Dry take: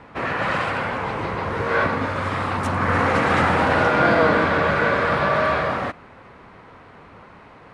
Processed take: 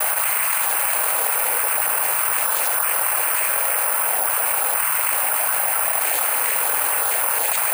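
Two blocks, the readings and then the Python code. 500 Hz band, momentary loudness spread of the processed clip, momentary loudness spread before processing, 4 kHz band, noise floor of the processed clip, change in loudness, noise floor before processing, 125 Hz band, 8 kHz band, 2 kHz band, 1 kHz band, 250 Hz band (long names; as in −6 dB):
−9.0 dB, 0 LU, 9 LU, +2.5 dB, −21 dBFS, +3.0 dB, −46 dBFS, below −40 dB, +28.5 dB, −2.5 dB, −3.0 dB, below −20 dB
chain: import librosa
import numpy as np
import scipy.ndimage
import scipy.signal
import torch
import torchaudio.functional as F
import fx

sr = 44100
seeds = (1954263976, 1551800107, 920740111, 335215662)

p1 = fx.spec_dropout(x, sr, seeds[0], share_pct=20)
p2 = fx.peak_eq(p1, sr, hz=960.0, db=-8.5, octaves=0.28)
p3 = fx.noise_vocoder(p2, sr, seeds[1], bands=8)
p4 = scipy.signal.sosfilt(scipy.signal.butter(4, 610.0, 'highpass', fs=sr, output='sos'), p3)
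p5 = p4 + fx.echo_single(p4, sr, ms=74, db=-10.0, dry=0)
p6 = (np.kron(p5[::4], np.eye(4)[0]) * 4)[:len(p5)]
p7 = fx.env_flatten(p6, sr, amount_pct=100)
y = p7 * librosa.db_to_amplitude(-8.0)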